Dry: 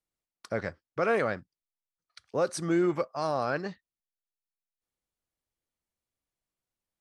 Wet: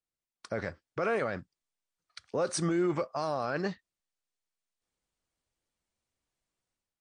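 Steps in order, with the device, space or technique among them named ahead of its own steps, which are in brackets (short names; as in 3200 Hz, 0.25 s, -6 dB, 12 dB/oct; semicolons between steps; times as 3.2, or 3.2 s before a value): low-bitrate web radio (AGC gain up to 9.5 dB; limiter -16 dBFS, peak gain reduction 9.5 dB; gain -5 dB; MP3 48 kbps 22050 Hz)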